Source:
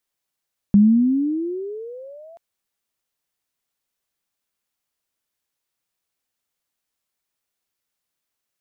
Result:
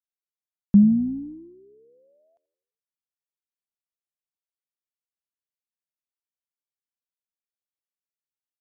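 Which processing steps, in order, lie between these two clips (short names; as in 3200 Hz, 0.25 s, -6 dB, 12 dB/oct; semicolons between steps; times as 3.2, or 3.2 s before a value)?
on a send: frequency-shifting echo 85 ms, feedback 55%, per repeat -44 Hz, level -19 dB; on the sum: upward expander 2.5:1, over -27 dBFS; gain +1 dB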